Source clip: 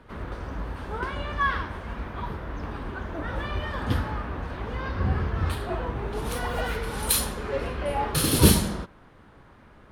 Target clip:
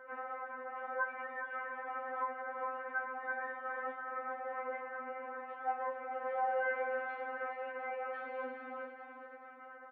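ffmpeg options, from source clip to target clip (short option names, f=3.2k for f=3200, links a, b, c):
-filter_complex "[0:a]acompressor=threshold=-35dB:ratio=6,asplit=2[a][b];[b]aecho=0:1:702:0.178[c];[a][c]amix=inputs=2:normalize=0,highpass=f=340:t=q:w=0.5412,highpass=f=340:t=q:w=1.307,lowpass=f=2k:t=q:w=0.5176,lowpass=f=2k:t=q:w=0.7071,lowpass=f=2k:t=q:w=1.932,afreqshift=53,asplit=2[d][e];[e]adelay=13,volume=-7dB[f];[d][f]amix=inputs=2:normalize=0,asplit=2[g][h];[h]aecho=0:1:413|826|1239|1652|2065:0.422|0.186|0.0816|0.0359|0.0158[i];[g][i]amix=inputs=2:normalize=0,afftfilt=real='re*3.46*eq(mod(b,12),0)':imag='im*3.46*eq(mod(b,12),0)':win_size=2048:overlap=0.75,volume=4dB"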